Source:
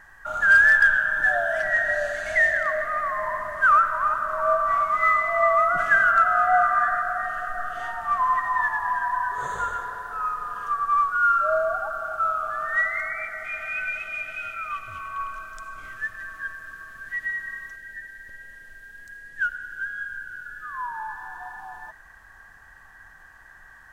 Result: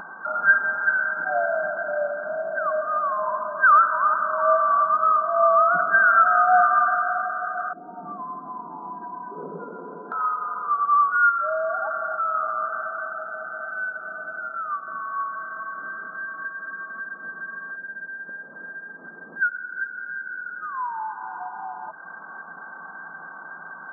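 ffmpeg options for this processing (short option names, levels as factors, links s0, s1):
-filter_complex "[0:a]asettb=1/sr,asplit=3[s0][s1][s2];[s0]atrim=end=7.734[s3];[s1]atrim=start=7.73:end=10.12,asetpts=PTS-STARTPTS,afade=t=in:d=0.004:c=qsin,afade=t=out:st=2.386:d=0.004:c=qsin,lowpass=f=320:t=q:w=1.8[s4];[s2]atrim=start=10.116[s5];[s3][s4]acrossfade=d=0.004:c1=hsin:c2=qsin[s6];[s6][s5]acrossfade=d=0.004:c1=qsin:c2=hsin,asettb=1/sr,asplit=3[s7][s8][s9];[s7]atrim=end=11.294[s10];[s8]atrim=start=11.29:end=12.35,asetpts=PTS-STARTPTS,afade=t=in:d=0.004:c=qsin,afade=t=out:st=1.056:d=0.004:c=qsin,acompressor=threshold=0.0631:ratio=6:attack=3.2:release=140:knee=1:detection=peak[s11];[s9]atrim=start=12.346[s12];[s10][s11]acrossfade=d=0.004:c1=hsin:c2=qsin[s13];[s13][s12]acrossfade=d=0.004:c1=qsin:c2=hsin,acontrast=50,afftfilt=real='re*between(b*sr/4096,160,1600)':imag='im*between(b*sr/4096,160,1600)':win_size=4096:overlap=0.75,acompressor=mode=upward:threshold=0.0631:ratio=2.5,volume=0.708"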